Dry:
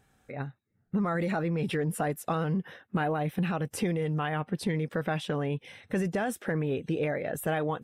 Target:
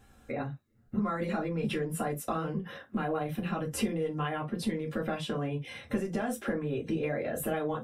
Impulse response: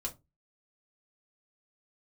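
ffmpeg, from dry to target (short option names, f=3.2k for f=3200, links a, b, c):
-filter_complex "[0:a]acompressor=threshold=-35dB:ratio=6[a];[1:a]atrim=start_sample=2205,atrim=end_sample=3969[b];[a][b]afir=irnorm=-1:irlink=0,volume=5.5dB"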